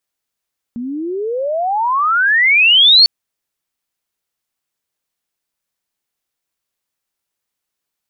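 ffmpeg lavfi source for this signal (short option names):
-f lavfi -i "aevalsrc='pow(10,(-21+17*t/2.3)/20)*sin(2*PI*230*2.3/log(4500/230)*(exp(log(4500/230)*t/2.3)-1))':d=2.3:s=44100"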